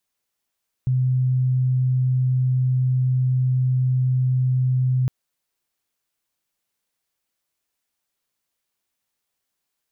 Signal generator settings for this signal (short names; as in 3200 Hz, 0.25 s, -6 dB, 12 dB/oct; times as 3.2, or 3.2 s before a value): tone sine 128 Hz -16.5 dBFS 4.21 s